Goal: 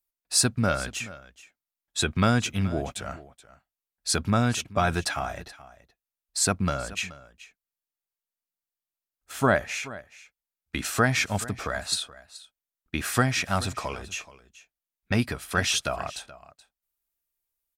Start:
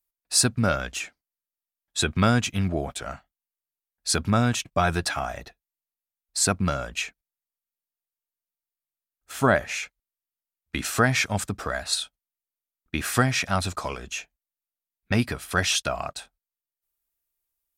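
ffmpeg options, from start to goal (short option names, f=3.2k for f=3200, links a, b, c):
-af "aecho=1:1:427:0.126,volume=-1.5dB"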